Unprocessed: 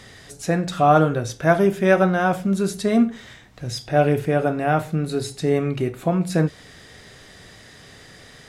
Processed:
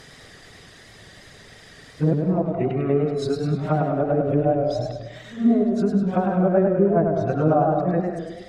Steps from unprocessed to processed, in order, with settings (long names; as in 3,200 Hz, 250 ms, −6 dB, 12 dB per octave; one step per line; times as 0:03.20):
played backwards from end to start
reverb reduction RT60 1.3 s
treble cut that deepens with the level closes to 590 Hz, closed at −17 dBFS
on a send at −7 dB: convolution reverb RT60 0.70 s, pre-delay 128 ms
on the sum: feedback echo with a swinging delay time 103 ms, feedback 54%, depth 113 cents, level −5 dB